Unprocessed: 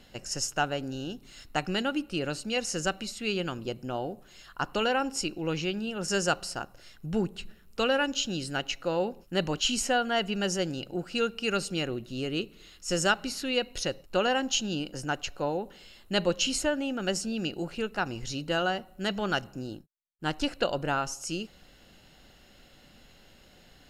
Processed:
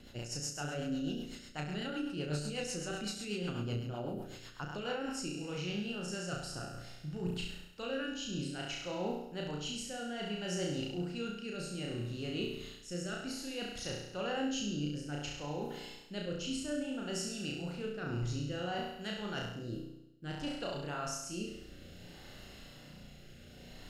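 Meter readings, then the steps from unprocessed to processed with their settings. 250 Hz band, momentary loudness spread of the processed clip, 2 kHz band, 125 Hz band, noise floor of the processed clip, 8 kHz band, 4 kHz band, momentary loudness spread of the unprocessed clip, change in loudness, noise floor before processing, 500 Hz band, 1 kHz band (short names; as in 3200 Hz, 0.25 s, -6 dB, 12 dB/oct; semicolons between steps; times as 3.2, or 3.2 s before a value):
-6.0 dB, 9 LU, -11.5 dB, -2.0 dB, -53 dBFS, -9.0 dB, -9.5 dB, 10 LU, -8.5 dB, -57 dBFS, -9.5 dB, -12.0 dB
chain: bell 130 Hz +5.5 dB 1.3 oct; reverse; compressor 6:1, threshold -38 dBFS, peak gain reduction 17.5 dB; reverse; flutter echo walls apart 5.8 m, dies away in 0.88 s; rotary speaker horn 8 Hz, later 0.6 Hz, at 4.54; gain +1 dB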